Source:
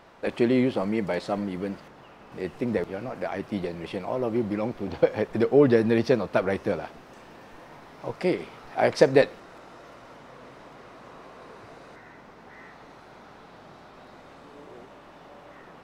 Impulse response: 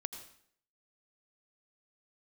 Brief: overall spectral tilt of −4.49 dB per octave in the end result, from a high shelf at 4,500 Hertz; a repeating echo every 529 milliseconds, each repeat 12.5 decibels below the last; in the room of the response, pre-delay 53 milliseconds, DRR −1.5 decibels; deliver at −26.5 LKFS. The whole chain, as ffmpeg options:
-filter_complex "[0:a]highshelf=frequency=4500:gain=-8,aecho=1:1:529|1058|1587:0.237|0.0569|0.0137,asplit=2[link_01][link_02];[1:a]atrim=start_sample=2205,adelay=53[link_03];[link_02][link_03]afir=irnorm=-1:irlink=0,volume=2.5dB[link_04];[link_01][link_04]amix=inputs=2:normalize=0,volume=-4.5dB"

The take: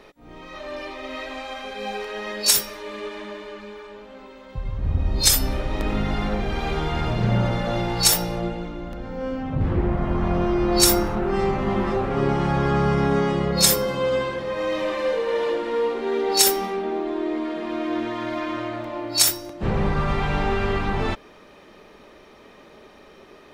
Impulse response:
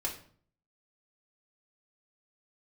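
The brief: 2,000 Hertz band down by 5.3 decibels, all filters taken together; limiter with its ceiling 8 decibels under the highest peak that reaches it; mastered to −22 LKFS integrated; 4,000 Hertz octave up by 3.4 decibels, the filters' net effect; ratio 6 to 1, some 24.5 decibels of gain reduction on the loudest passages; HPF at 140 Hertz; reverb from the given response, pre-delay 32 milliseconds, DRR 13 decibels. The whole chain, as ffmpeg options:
-filter_complex "[0:a]highpass=140,equalizer=frequency=2000:width_type=o:gain=-8.5,equalizer=frequency=4000:width_type=o:gain=6,acompressor=threshold=-38dB:ratio=6,alimiter=level_in=8dB:limit=-24dB:level=0:latency=1,volume=-8dB,asplit=2[link_01][link_02];[1:a]atrim=start_sample=2205,adelay=32[link_03];[link_02][link_03]afir=irnorm=-1:irlink=0,volume=-16.5dB[link_04];[link_01][link_04]amix=inputs=2:normalize=0,volume=19dB"

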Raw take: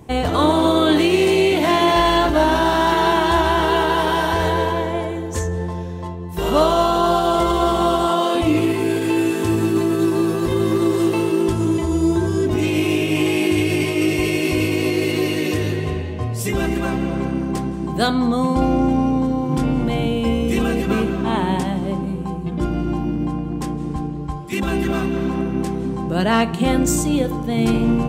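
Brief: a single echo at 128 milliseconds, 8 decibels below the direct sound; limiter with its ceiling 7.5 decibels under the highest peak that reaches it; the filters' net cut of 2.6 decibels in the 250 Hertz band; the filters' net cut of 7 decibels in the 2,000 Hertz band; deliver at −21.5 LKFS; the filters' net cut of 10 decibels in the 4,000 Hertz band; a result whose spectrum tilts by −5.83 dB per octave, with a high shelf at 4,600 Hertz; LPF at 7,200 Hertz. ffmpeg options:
ffmpeg -i in.wav -af "lowpass=7200,equalizer=frequency=250:width_type=o:gain=-3.5,equalizer=frequency=2000:width_type=o:gain=-6,equalizer=frequency=4000:width_type=o:gain=-7,highshelf=frequency=4600:gain=-8,alimiter=limit=-13dB:level=0:latency=1,aecho=1:1:128:0.398,volume=0.5dB" out.wav

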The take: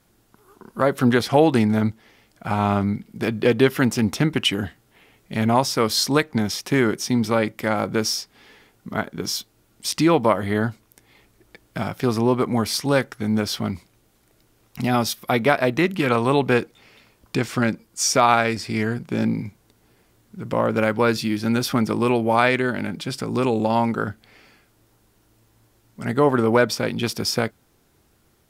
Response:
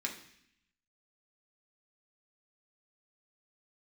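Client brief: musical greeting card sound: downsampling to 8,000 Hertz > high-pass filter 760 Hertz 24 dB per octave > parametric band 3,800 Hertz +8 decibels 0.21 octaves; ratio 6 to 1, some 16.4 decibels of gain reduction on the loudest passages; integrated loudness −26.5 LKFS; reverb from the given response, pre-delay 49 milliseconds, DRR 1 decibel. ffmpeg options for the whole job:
-filter_complex "[0:a]acompressor=threshold=-30dB:ratio=6,asplit=2[link_01][link_02];[1:a]atrim=start_sample=2205,adelay=49[link_03];[link_02][link_03]afir=irnorm=-1:irlink=0,volume=-3.5dB[link_04];[link_01][link_04]amix=inputs=2:normalize=0,aresample=8000,aresample=44100,highpass=frequency=760:width=0.5412,highpass=frequency=760:width=1.3066,equalizer=frequency=3800:width_type=o:width=0.21:gain=8,volume=12dB"

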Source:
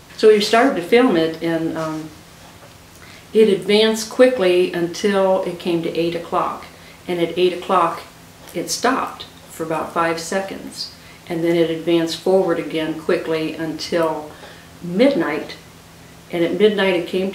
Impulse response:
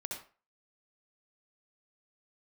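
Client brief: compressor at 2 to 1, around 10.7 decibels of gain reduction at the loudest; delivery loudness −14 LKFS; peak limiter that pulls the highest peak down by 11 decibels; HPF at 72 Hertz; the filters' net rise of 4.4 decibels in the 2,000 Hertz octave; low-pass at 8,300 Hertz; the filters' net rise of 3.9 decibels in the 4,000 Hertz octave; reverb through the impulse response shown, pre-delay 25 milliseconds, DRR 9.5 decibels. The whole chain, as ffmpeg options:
-filter_complex "[0:a]highpass=72,lowpass=8300,equalizer=frequency=2000:width_type=o:gain=4.5,equalizer=frequency=4000:width_type=o:gain=3.5,acompressor=threshold=-27dB:ratio=2,alimiter=limit=-18.5dB:level=0:latency=1,asplit=2[link_01][link_02];[1:a]atrim=start_sample=2205,adelay=25[link_03];[link_02][link_03]afir=irnorm=-1:irlink=0,volume=-9.5dB[link_04];[link_01][link_04]amix=inputs=2:normalize=0,volume=15dB"

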